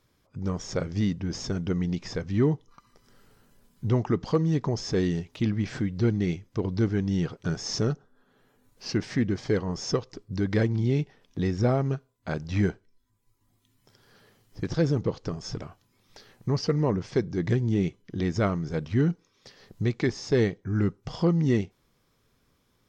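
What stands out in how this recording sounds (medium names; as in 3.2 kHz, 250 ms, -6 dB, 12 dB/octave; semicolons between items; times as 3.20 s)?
noise floor -69 dBFS; spectral tilt -7.0 dB/octave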